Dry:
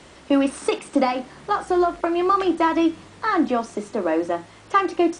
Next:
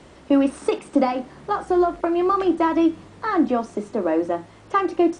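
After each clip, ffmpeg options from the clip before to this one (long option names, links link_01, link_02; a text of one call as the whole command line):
ffmpeg -i in.wav -af "tiltshelf=frequency=1100:gain=4,volume=-2dB" out.wav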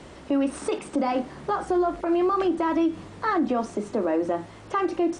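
ffmpeg -i in.wav -af "alimiter=limit=-18.5dB:level=0:latency=1:release=104,volume=2.5dB" out.wav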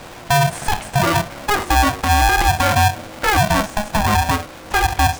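ffmpeg -i in.wav -af "aeval=exprs='val(0)*sgn(sin(2*PI*420*n/s))':channel_layout=same,volume=8dB" out.wav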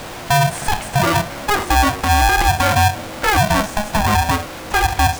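ffmpeg -i in.wav -af "aeval=exprs='val(0)+0.5*0.0282*sgn(val(0))':channel_layout=same" out.wav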